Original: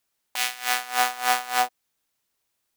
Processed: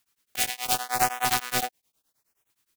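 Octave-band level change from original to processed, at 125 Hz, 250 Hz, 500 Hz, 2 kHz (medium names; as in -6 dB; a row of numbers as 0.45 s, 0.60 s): no reading, +6.5 dB, 0.0 dB, -4.5 dB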